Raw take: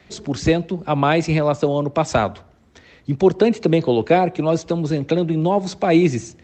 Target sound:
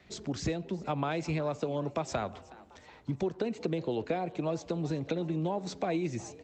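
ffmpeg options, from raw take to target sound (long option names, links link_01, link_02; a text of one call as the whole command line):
ffmpeg -i in.wav -filter_complex "[0:a]acompressor=threshold=-20dB:ratio=6,asplit=2[link_01][link_02];[link_02]asplit=4[link_03][link_04][link_05][link_06];[link_03]adelay=369,afreqshift=110,volume=-20.5dB[link_07];[link_04]adelay=738,afreqshift=220,volume=-26dB[link_08];[link_05]adelay=1107,afreqshift=330,volume=-31.5dB[link_09];[link_06]adelay=1476,afreqshift=440,volume=-37dB[link_10];[link_07][link_08][link_09][link_10]amix=inputs=4:normalize=0[link_11];[link_01][link_11]amix=inputs=2:normalize=0,volume=-8.5dB" out.wav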